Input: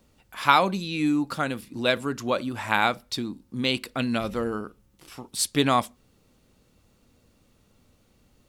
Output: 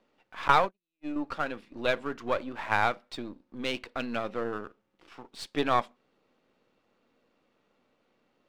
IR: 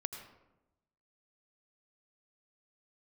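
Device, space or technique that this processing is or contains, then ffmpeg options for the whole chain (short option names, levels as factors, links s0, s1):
crystal radio: -filter_complex "[0:a]asettb=1/sr,asplit=3[s0][s1][s2];[s0]atrim=end=0.484[s3];[s1]atrim=start=0.48:end=1.16,asetpts=PTS-STARTPTS,afade=t=in:d=0.004:c=qsin,afade=t=out:st=0.676:d=0.004:c=qsin,agate=range=0.00224:threshold=0.0891:ratio=16:detection=peak[s4];[s2]atrim=start=1.156[s5];[s3][s4]acrossfade=d=0.004:c1=hsin:c2=qsin[s6];[s6][s5]acrossfade=d=0.004:c1=qsin:c2=hsin,highpass=330,lowpass=2700,aeval=exprs='if(lt(val(0),0),0.447*val(0),val(0))':c=same"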